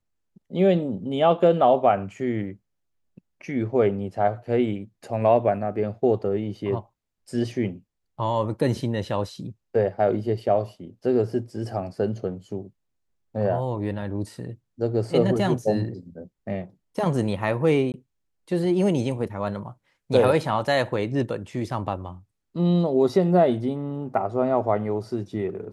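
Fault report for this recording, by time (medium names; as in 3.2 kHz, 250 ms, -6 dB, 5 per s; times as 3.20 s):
17.92–17.94 s: dropout 19 ms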